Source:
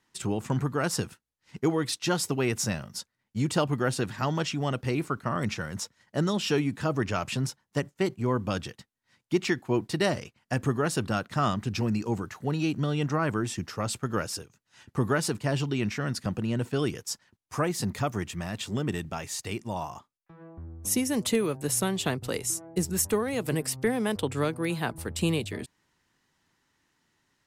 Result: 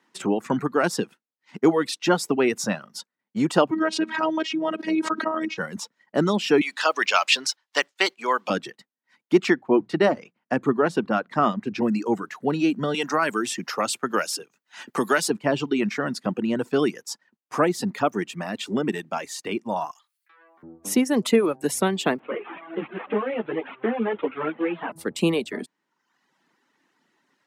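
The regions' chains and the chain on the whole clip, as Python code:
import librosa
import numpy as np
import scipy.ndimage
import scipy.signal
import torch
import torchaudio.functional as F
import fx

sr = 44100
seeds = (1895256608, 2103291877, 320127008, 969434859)

y = fx.chain(x, sr, fx.lowpass(hz=5300.0, slope=12),
    fx.robotise(hz=317.0),
    fx.pre_swell(db_per_s=45.0), at=(3.71, 5.58))
y = fx.chain(y, sr, fx.highpass(hz=650.0, slope=12),
    fx.peak_eq(hz=4100.0, db=15.0, octaves=2.4),
    fx.mod_noise(seeds[0], snr_db=32), at=(6.61, 8.5))
y = fx.chain(y, sr, fx.lowpass(hz=2400.0, slope=6),
    fx.hum_notches(base_hz=60, count=3), at=(9.54, 11.82))
y = fx.chain(y, sr, fx.tilt_eq(slope=2.5),
    fx.band_squash(depth_pct=40), at=(12.94, 15.3))
y = fx.chain(y, sr, fx.bessel_highpass(hz=2600.0, order=2),
    fx.env_flatten(amount_pct=50), at=(19.91, 20.63))
y = fx.chain(y, sr, fx.delta_mod(bps=16000, step_db=-34.0),
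    fx.highpass(hz=220.0, slope=6),
    fx.ensemble(), at=(22.18, 24.92))
y = scipy.signal.sosfilt(scipy.signal.butter(4, 200.0, 'highpass', fs=sr, output='sos'), y)
y = fx.dereverb_blind(y, sr, rt60_s=0.8)
y = fx.high_shelf(y, sr, hz=3800.0, db=-11.5)
y = F.gain(torch.from_numpy(y), 8.5).numpy()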